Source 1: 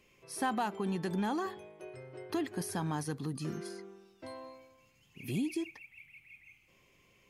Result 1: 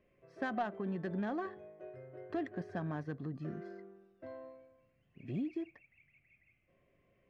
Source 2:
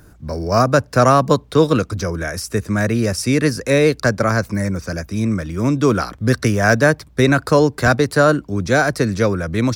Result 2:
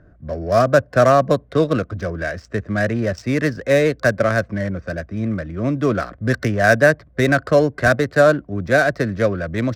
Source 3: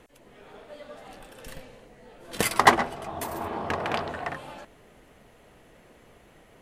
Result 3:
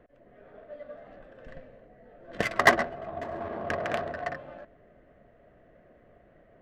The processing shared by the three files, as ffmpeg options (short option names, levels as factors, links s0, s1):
-af "superequalizer=8b=2:9b=0.501:11b=1.78:16b=0.316,adynamicsmooth=sensitivity=1.5:basefreq=1500,volume=0.668"